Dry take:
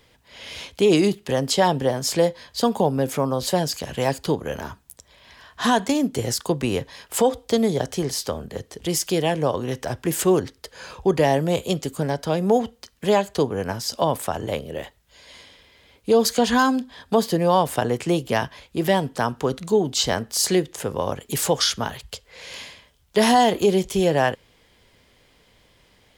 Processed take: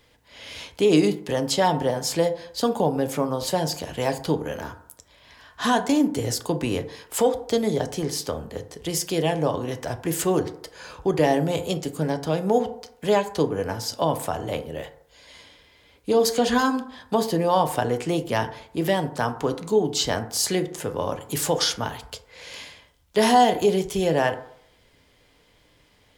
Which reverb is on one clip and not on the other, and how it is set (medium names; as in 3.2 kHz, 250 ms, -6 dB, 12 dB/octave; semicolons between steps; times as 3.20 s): FDN reverb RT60 0.67 s, low-frequency decay 0.85×, high-frequency decay 0.35×, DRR 7.5 dB; trim -2.5 dB